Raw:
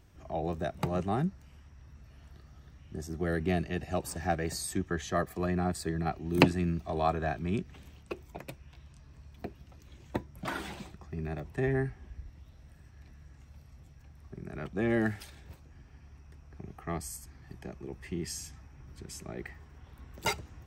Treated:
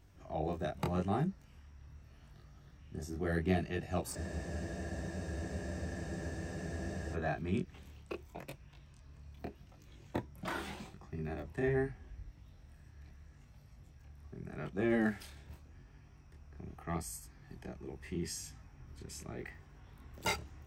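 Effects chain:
chorus effect 0.81 Hz, delay 20 ms, depth 7.7 ms
frozen spectrum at 0:04.18, 2.97 s

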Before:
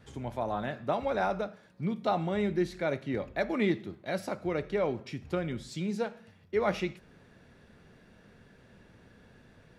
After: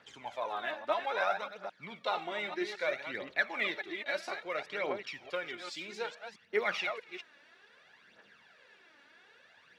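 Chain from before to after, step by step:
delay that plays each chunk backwards 212 ms, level −8 dB
low-pass filter 3,200 Hz 12 dB per octave
spectral tilt +3.5 dB per octave
phase shifter 0.61 Hz, delay 3.6 ms, feedback 60%
high-pass filter 760 Hz 6 dB per octave

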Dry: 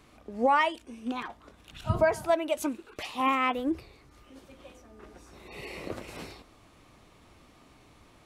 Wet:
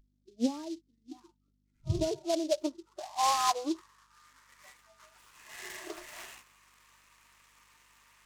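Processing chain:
hearing-aid frequency compression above 1,200 Hz 1.5 to 1
0:00.69–0:01.19: comb filter 6.5 ms, depth 38%
mains hum 50 Hz, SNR 12 dB
low-pass filter sweep 280 Hz → 2,700 Hz, 0:01.63–0:05.06
noise reduction from a noise print of the clip's start 29 dB
short delay modulated by noise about 4,500 Hz, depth 0.064 ms
level −3 dB

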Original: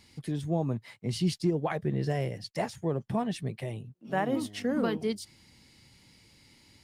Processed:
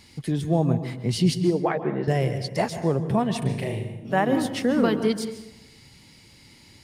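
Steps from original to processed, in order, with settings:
0:01.40–0:02.08: band-pass filter 240–2,200 Hz
0:03.38–0:04.00: flutter between parallel walls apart 6.4 metres, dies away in 0.47 s
dense smooth reverb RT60 0.91 s, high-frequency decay 0.6×, pre-delay 120 ms, DRR 10.5 dB
level +7 dB

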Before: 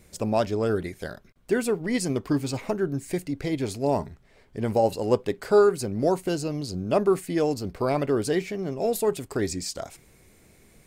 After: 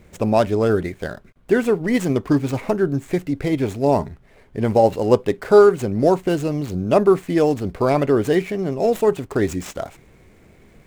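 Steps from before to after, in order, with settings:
running median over 9 samples
level +7 dB

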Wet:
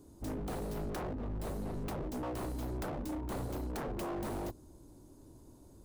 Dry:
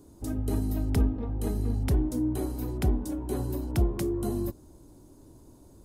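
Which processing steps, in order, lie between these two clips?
stylus tracing distortion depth 0.2 ms
0:01.13–0:02.23: notch comb filter 150 Hz
wave folding −29.5 dBFS
level −3.5 dB

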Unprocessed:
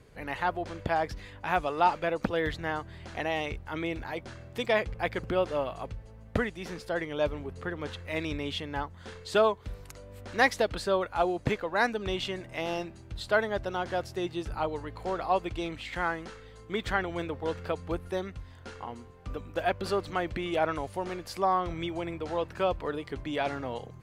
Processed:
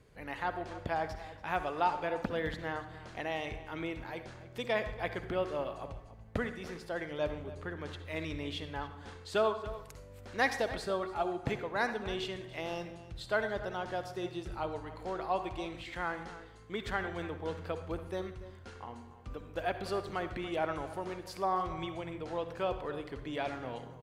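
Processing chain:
0:10.85–0:11.42: notch comb filter 500 Hz
slap from a distant wall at 49 metres, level −15 dB
on a send at −9.5 dB: convolution reverb RT60 0.70 s, pre-delay 46 ms
on the sum: level −6 dB

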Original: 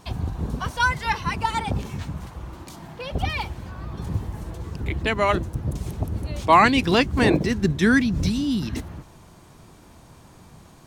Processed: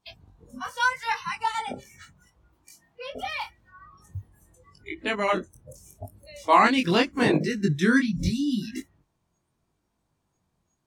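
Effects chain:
chorus effect 0.8 Hz, delay 19 ms, depth 4.3 ms
noise reduction from a noise print of the clip's start 24 dB

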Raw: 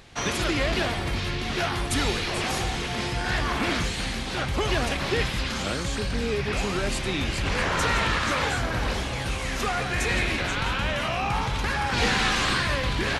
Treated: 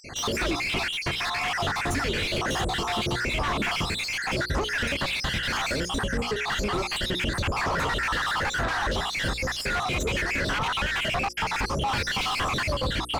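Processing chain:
time-frequency cells dropped at random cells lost 62%
downward compressor 5 to 1, threshold −31 dBFS, peak gain reduction 9 dB
mid-hump overdrive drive 23 dB, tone 4,000 Hz, clips at −20 dBFS
low-shelf EQ 210 Hz +11 dB
mains-hum notches 60/120/180/240/300/360/420/480/540 Hz

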